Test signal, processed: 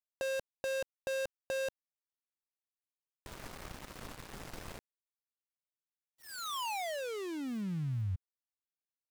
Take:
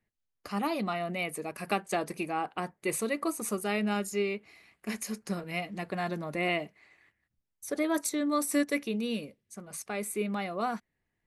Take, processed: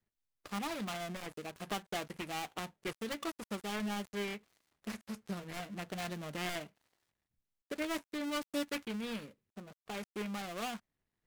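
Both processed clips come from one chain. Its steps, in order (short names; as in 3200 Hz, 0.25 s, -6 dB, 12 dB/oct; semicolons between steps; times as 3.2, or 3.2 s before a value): switching dead time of 0.25 ms; dynamic EQ 390 Hz, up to -6 dB, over -40 dBFS, Q 0.71; Doppler distortion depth 0.24 ms; gain -3.5 dB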